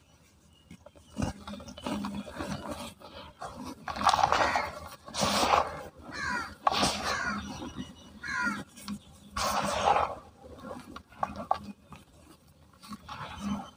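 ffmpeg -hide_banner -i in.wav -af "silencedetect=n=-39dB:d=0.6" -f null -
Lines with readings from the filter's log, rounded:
silence_start: 0.00
silence_end: 0.71 | silence_duration: 0.71
silence_start: 11.96
silence_end: 12.84 | silence_duration: 0.88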